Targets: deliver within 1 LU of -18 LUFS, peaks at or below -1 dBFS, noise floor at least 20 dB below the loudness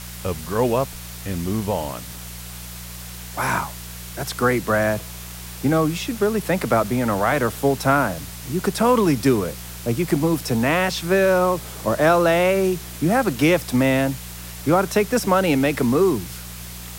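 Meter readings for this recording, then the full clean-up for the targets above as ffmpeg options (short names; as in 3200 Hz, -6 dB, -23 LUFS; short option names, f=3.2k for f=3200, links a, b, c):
hum 60 Hz; harmonics up to 180 Hz; hum level -35 dBFS; noise floor -36 dBFS; noise floor target -41 dBFS; loudness -20.5 LUFS; peak -5.0 dBFS; loudness target -18.0 LUFS
-> -af "bandreject=f=60:t=h:w=4,bandreject=f=120:t=h:w=4,bandreject=f=180:t=h:w=4"
-af "afftdn=nr=6:nf=-36"
-af "volume=2.5dB"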